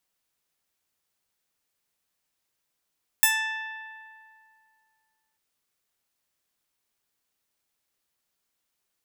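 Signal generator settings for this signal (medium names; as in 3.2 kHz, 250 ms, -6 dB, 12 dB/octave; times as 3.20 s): plucked string A5, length 2.14 s, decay 2.44 s, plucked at 0.19, bright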